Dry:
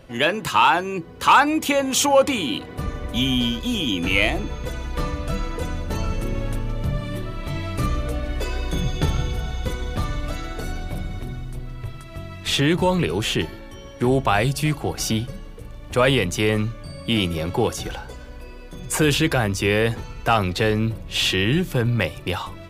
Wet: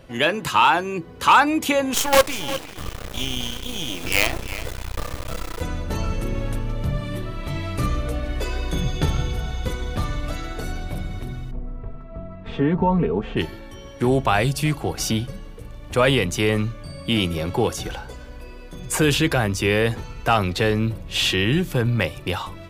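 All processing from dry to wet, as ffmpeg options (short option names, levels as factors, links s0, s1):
-filter_complex "[0:a]asettb=1/sr,asplit=3[s0][s1][s2];[s0]atrim=end=1.944[s3];[s1]atrim=start=1.94:end=5.61,asetpts=PTS-STARTPTS,afade=t=in:d=0.004:c=qsin,afade=t=out:st=3.666:d=0.004:c=qsin,equalizer=f=220:w=1.9:g=-9.5,acrusher=bits=3:dc=4:mix=0:aa=0.000001,aecho=1:1:354:0.2,atrim=end_sample=161847[s4];[s2]atrim=start=5.606[s5];[s3][s4]acrossfade=d=0.004:c1=hsin:c2=qsin[s6];[s6][s5]acrossfade=d=0.004:c1=qsin:c2=hsin,asettb=1/sr,asplit=3[s7][s8][s9];[s7]atrim=end=11.514[s10];[s8]atrim=start=11.51:end=13.37,asetpts=PTS-STARTPTS,afade=t=in:d=0.004:c=qsin,afade=t=out:st=1.856:d=0.004:c=qsin,lowpass=1000,aecho=1:1:4.4:0.7,atrim=end_sample=82026[s11];[s9]atrim=start=13.366[s12];[s10][s11]acrossfade=d=0.004:c1=hsin:c2=qsin[s13];[s13][s12]acrossfade=d=0.004:c1=qsin:c2=hsin"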